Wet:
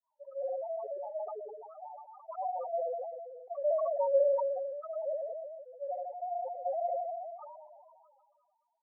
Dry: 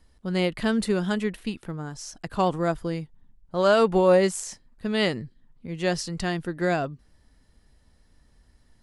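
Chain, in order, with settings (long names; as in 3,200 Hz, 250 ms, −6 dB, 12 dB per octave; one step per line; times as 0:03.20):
reversed piece by piece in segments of 70 ms
Chebyshev band-pass filter 590–1,300 Hz, order 3
downward compressor 2.5 to 1, threshold −33 dBFS, peak gain reduction 10.5 dB
reverse bouncing-ball delay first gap 70 ms, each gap 1.2×, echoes 5
granular cloud 209 ms, grains 6.4 per second, spray 12 ms, pitch spread up and down by 0 semitones
spectral peaks only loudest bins 2
level that may fall only so fast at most 28 dB per second
level +5.5 dB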